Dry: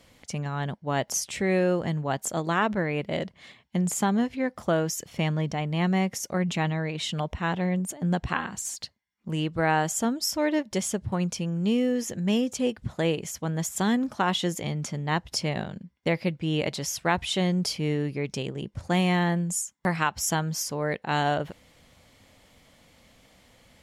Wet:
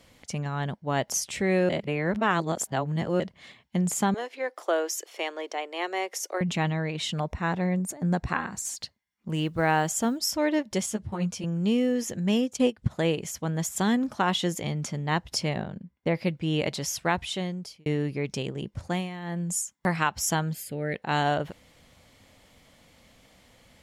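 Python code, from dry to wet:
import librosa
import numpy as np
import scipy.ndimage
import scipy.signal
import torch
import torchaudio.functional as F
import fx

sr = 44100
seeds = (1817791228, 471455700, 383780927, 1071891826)

y = fx.steep_highpass(x, sr, hz=340.0, slope=48, at=(4.14, 6.41))
y = fx.peak_eq(y, sr, hz=3100.0, db=-14.0, octaves=0.23, at=(7.13, 8.65))
y = fx.quant_companded(y, sr, bits=8, at=(9.34, 10.19))
y = fx.ensemble(y, sr, at=(10.86, 11.44))
y = fx.transient(y, sr, attack_db=7, sustain_db=-9, at=(12.45, 12.9), fade=0.02)
y = fx.high_shelf(y, sr, hz=2500.0, db=-11.0, at=(15.55, 16.14), fade=0.02)
y = fx.fixed_phaser(y, sr, hz=2500.0, stages=4, at=(20.53, 20.95))
y = fx.edit(y, sr, fx.reverse_span(start_s=1.69, length_s=1.51),
    fx.fade_out_span(start_s=16.99, length_s=0.87),
    fx.fade_down_up(start_s=18.79, length_s=0.74, db=-14.5, fade_s=0.31), tone=tone)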